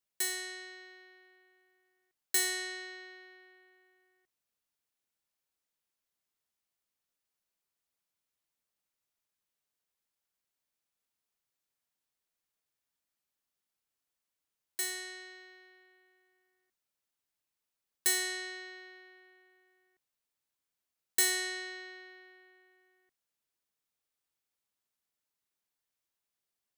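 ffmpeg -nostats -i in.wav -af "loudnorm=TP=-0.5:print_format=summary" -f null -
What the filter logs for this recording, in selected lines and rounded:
Input Integrated:    -33.2 LUFS
Input True Peak:     -14.6 dBTP
Input LRA:            16.7 LU
Input Threshold:     -46.6 LUFS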